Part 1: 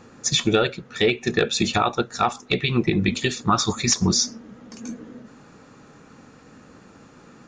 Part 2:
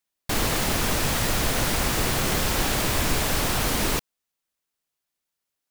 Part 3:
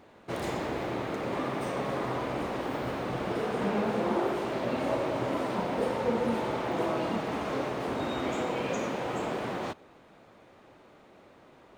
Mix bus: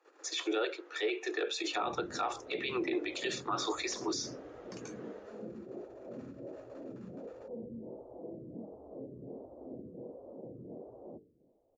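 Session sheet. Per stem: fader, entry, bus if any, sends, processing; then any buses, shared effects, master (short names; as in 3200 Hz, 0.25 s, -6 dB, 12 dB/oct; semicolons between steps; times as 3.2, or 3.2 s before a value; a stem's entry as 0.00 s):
-3.5 dB, 0.00 s, bus A, no send, gate -46 dBFS, range -18 dB; limiter -12.5 dBFS, peak gain reduction 5.5 dB
off
-7.5 dB, 1.45 s, no bus, no send, limiter -24.5 dBFS, peak gain reduction 8 dB; inverse Chebyshev low-pass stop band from 1900 Hz, stop band 60 dB; photocell phaser 1.4 Hz
bus A: 0.0 dB, steep high-pass 300 Hz 96 dB/oct; limiter -23 dBFS, peak gain reduction 9 dB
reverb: off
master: LPF 3400 Hz 6 dB/oct; notches 50/100/150/200/250/300/350/400/450 Hz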